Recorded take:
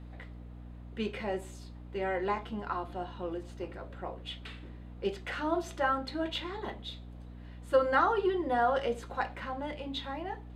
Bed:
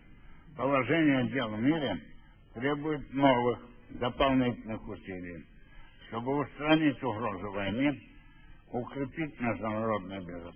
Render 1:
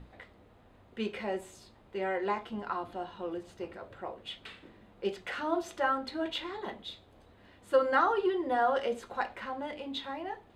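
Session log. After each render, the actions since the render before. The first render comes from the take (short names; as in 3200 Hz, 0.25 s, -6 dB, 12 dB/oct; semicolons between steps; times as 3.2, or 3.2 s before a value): notches 60/120/180/240/300 Hz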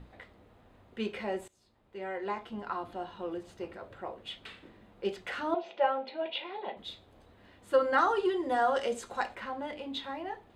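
1.48–3.29 fade in equal-power, from -21 dB; 5.54–6.77 speaker cabinet 290–3700 Hz, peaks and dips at 310 Hz -8 dB, 550 Hz +6 dB, 810 Hz +5 dB, 1200 Hz -9 dB, 1700 Hz -7 dB, 2500 Hz +6 dB; 7.98–9.35 bell 7700 Hz +11 dB 1.2 oct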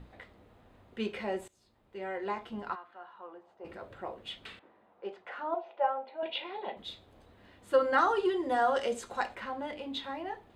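2.74–3.64 band-pass 1800 Hz -> 720 Hz, Q 2.2; 4.59–6.23 band-pass 860 Hz, Q 1.2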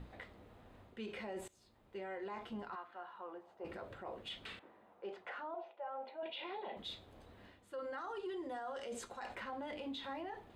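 reverse; compressor 4:1, threshold -38 dBFS, peak gain reduction 15.5 dB; reverse; limiter -36.5 dBFS, peak gain reduction 10 dB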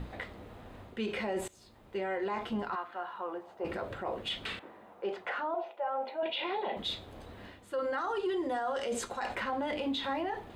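gain +10.5 dB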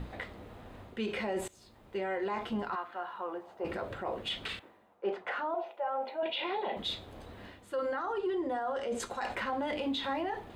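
4.48–5.28 three-band expander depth 70%; 7.93–9 high shelf 2800 Hz -10.5 dB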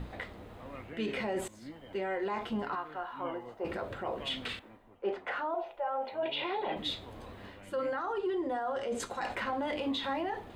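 add bed -20 dB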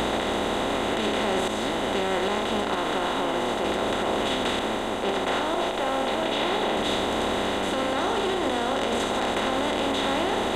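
per-bin compression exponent 0.2; limiter -15.5 dBFS, peak gain reduction 5.5 dB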